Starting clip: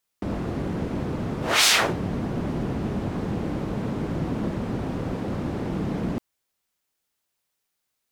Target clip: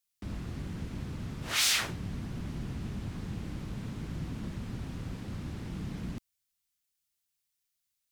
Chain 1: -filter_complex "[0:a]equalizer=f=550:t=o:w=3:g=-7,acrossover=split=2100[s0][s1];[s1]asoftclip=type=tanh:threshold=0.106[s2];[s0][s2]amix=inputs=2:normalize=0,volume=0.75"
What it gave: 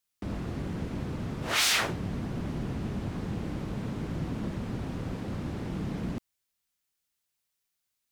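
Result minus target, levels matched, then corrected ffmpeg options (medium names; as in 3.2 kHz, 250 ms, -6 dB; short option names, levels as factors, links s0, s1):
500 Hz band +6.5 dB
-filter_complex "[0:a]equalizer=f=550:t=o:w=3:g=-17,acrossover=split=2100[s0][s1];[s1]asoftclip=type=tanh:threshold=0.106[s2];[s0][s2]amix=inputs=2:normalize=0,volume=0.75"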